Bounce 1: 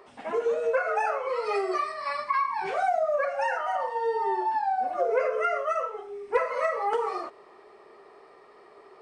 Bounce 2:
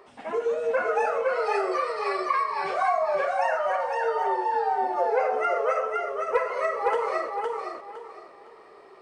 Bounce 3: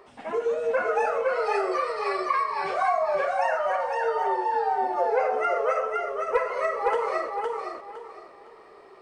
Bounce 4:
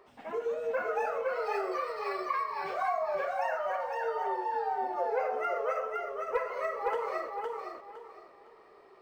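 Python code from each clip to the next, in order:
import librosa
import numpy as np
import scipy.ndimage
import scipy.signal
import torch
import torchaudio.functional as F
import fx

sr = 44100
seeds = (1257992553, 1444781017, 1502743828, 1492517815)

y1 = fx.echo_feedback(x, sr, ms=511, feedback_pct=26, wet_db=-3)
y2 = fx.low_shelf(y1, sr, hz=83.0, db=7.0)
y3 = np.interp(np.arange(len(y2)), np.arange(len(y2))[::2], y2[::2])
y3 = F.gain(torch.from_numpy(y3), -7.0).numpy()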